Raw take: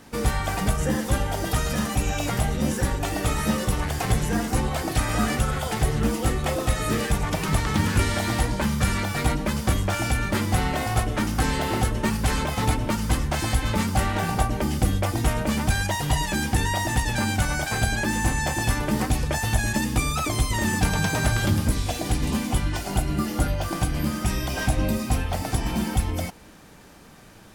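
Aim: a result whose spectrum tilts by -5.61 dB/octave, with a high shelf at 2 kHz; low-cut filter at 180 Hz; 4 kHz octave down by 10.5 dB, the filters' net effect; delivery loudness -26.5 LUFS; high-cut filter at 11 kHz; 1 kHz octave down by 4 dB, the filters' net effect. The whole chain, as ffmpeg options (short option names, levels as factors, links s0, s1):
-af "highpass=180,lowpass=11000,equalizer=f=1000:t=o:g=-3,highshelf=f=2000:g=-9,equalizer=f=4000:t=o:g=-4.5,volume=1.5"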